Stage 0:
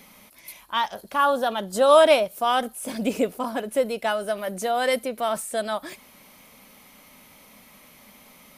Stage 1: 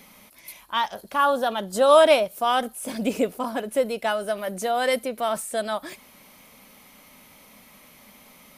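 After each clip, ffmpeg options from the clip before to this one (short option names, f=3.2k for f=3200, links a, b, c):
-af anull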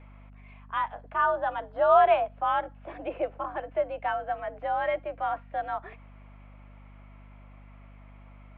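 -filter_complex "[0:a]acrossover=split=340 2200:gain=0.0794 1 0.141[a][b][c];[a][b][c]amix=inputs=3:normalize=0,highpass=f=160:t=q:w=0.5412,highpass=f=160:t=q:w=1.307,lowpass=f=3.1k:t=q:w=0.5176,lowpass=f=3.1k:t=q:w=0.7071,lowpass=f=3.1k:t=q:w=1.932,afreqshift=71,aeval=exprs='val(0)+0.00562*(sin(2*PI*50*n/s)+sin(2*PI*2*50*n/s)/2+sin(2*PI*3*50*n/s)/3+sin(2*PI*4*50*n/s)/4+sin(2*PI*5*50*n/s)/5)':c=same,volume=-3.5dB"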